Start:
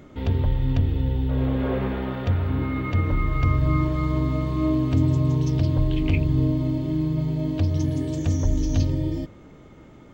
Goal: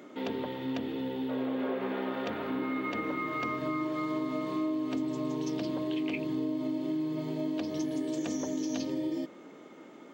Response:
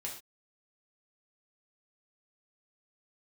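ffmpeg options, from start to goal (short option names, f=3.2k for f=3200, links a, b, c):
-af "highpass=f=240:w=0.5412,highpass=f=240:w=1.3066,acompressor=threshold=-29dB:ratio=6"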